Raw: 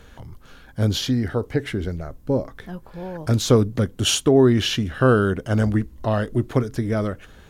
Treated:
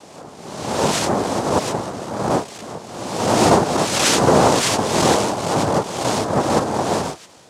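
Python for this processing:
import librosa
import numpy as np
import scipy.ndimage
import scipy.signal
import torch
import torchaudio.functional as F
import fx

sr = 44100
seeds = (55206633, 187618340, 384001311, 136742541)

y = fx.spec_swells(x, sr, rise_s=1.28)
y = fx.noise_vocoder(y, sr, seeds[0], bands=2)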